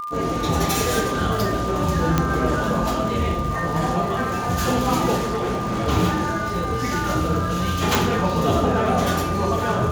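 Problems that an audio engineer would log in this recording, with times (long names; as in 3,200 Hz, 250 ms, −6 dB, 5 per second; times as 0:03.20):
surface crackle 140 per second −29 dBFS
whistle 1,200 Hz −27 dBFS
0:02.18: click −5 dBFS
0:05.16–0:05.89: clipping −20 dBFS
0:07.95: click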